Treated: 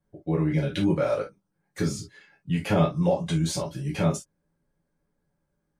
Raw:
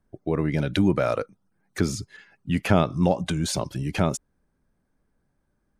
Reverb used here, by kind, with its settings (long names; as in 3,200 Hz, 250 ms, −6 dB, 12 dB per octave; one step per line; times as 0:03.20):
reverb whose tail is shaped and stops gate 90 ms falling, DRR −4.5 dB
level −9 dB